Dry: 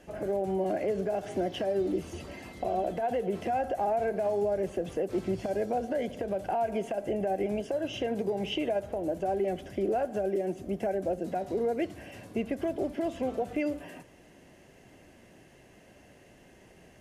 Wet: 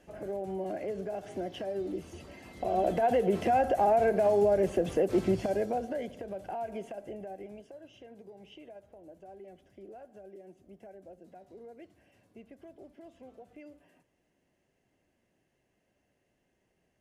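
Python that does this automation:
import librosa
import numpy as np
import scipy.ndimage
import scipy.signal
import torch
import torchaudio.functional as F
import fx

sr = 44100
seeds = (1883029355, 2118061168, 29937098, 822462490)

y = fx.gain(x, sr, db=fx.line((2.42, -6.0), (2.89, 4.0), (5.27, 4.0), (6.23, -7.5), (6.82, -7.5), (7.95, -20.0)))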